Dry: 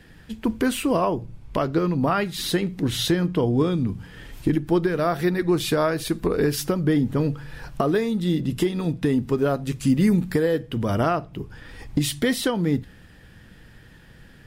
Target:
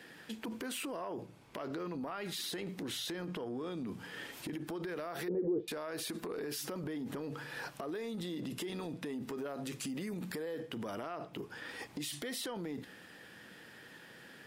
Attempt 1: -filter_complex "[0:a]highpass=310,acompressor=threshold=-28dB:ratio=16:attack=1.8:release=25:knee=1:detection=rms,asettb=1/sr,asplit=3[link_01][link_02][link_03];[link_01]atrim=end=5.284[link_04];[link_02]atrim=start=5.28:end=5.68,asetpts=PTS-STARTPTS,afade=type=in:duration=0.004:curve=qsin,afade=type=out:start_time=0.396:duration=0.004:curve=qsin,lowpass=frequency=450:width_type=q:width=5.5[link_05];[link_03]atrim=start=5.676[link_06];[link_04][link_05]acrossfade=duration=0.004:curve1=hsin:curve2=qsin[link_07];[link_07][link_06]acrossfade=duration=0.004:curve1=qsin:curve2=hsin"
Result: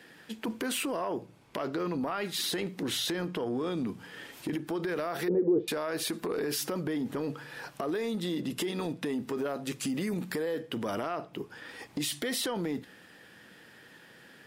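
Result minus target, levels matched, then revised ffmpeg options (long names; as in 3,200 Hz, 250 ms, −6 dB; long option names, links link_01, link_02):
downward compressor: peak gain reduction −8 dB
-filter_complex "[0:a]highpass=310,acompressor=threshold=-36.5dB:ratio=16:attack=1.8:release=25:knee=1:detection=rms,asettb=1/sr,asplit=3[link_01][link_02][link_03];[link_01]atrim=end=5.284[link_04];[link_02]atrim=start=5.28:end=5.68,asetpts=PTS-STARTPTS,afade=type=in:duration=0.004:curve=qsin,afade=type=out:start_time=0.396:duration=0.004:curve=qsin,lowpass=frequency=450:width_type=q:width=5.5[link_05];[link_03]atrim=start=5.676[link_06];[link_04][link_05]acrossfade=duration=0.004:curve1=hsin:curve2=qsin[link_07];[link_07][link_06]acrossfade=duration=0.004:curve1=qsin:curve2=hsin"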